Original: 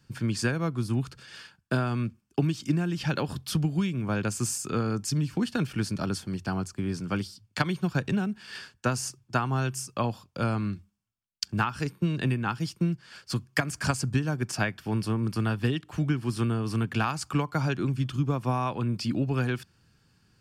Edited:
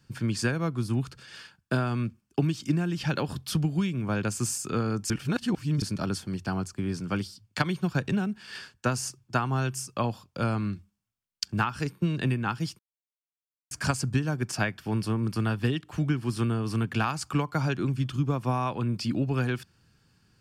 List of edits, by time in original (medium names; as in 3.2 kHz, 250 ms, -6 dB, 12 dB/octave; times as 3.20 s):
5.10–5.82 s: reverse
12.79–13.71 s: mute